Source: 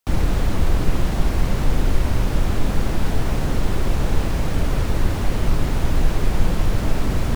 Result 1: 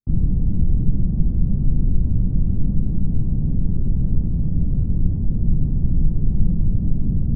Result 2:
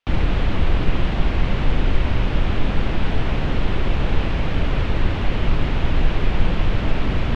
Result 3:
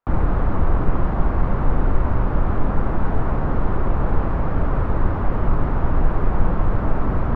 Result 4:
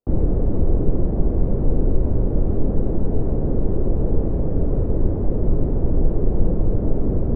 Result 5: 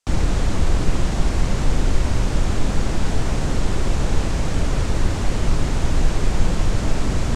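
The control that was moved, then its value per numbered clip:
low-pass with resonance, frequency: 180, 3,000, 1,200, 450, 7,600 Hertz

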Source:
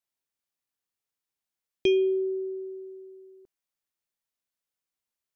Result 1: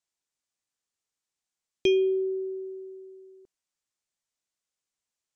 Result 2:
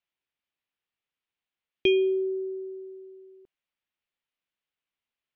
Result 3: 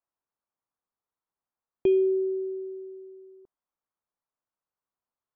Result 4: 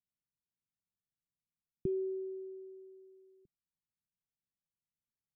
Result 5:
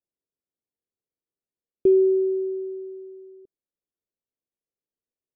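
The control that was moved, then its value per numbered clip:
low-pass with resonance, frequency: 7,500, 2,900, 1,100, 170, 440 Hertz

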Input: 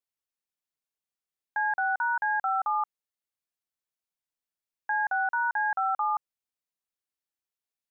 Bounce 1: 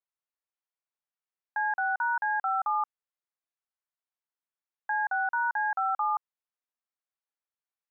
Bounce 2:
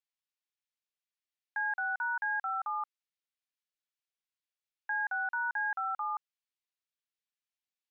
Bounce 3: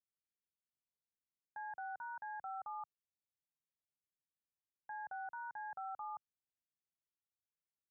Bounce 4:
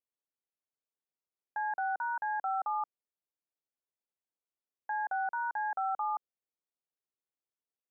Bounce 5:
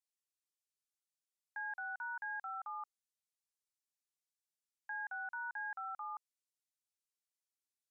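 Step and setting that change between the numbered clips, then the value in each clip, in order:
resonant band-pass, frequency: 1,100, 2,900, 110, 420, 7,500 Hertz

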